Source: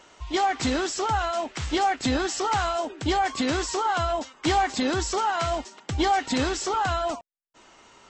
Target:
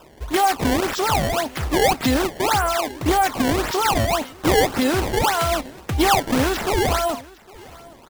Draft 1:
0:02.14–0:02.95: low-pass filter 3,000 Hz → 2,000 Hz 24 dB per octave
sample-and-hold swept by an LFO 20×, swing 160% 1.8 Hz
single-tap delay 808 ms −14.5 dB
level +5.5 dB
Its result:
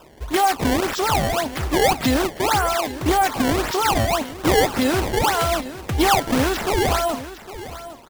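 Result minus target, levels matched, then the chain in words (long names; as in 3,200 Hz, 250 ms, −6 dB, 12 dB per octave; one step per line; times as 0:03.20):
echo-to-direct +8.5 dB
0:02.14–0:02.95: low-pass filter 3,000 Hz → 2,000 Hz 24 dB per octave
sample-and-hold swept by an LFO 20×, swing 160% 1.8 Hz
single-tap delay 808 ms −23 dB
level +5.5 dB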